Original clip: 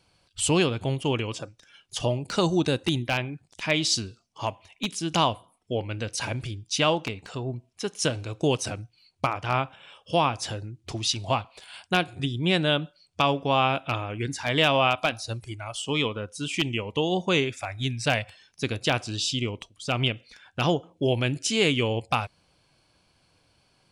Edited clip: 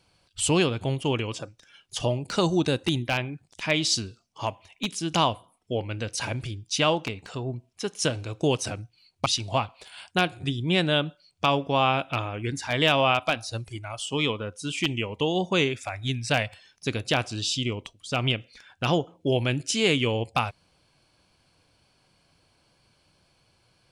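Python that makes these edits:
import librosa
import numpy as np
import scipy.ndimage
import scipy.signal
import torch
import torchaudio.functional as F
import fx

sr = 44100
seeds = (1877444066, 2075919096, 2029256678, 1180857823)

y = fx.edit(x, sr, fx.cut(start_s=9.26, length_s=1.76), tone=tone)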